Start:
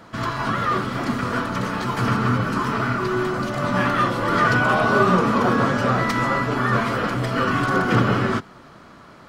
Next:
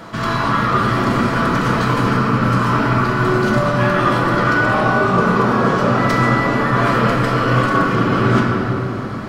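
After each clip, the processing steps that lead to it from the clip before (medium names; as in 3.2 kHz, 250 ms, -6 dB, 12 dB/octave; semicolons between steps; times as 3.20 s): reverse; compression 6:1, threshold -27 dBFS, peak gain reduction 14 dB; reverse; simulated room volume 210 m³, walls hard, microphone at 0.66 m; trim +9 dB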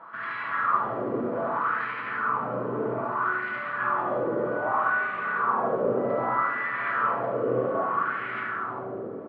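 distance through air 380 m; loudspeakers at several distances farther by 25 m -5 dB, 43 m -12 dB; wah-wah 0.63 Hz 450–2100 Hz, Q 3.3; trim -1.5 dB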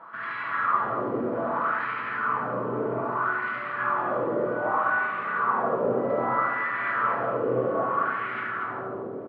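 delay 237 ms -9.5 dB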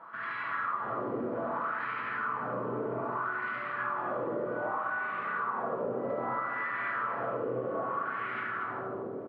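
compression, threshold -26 dBFS, peak gain reduction 8 dB; trim -3.5 dB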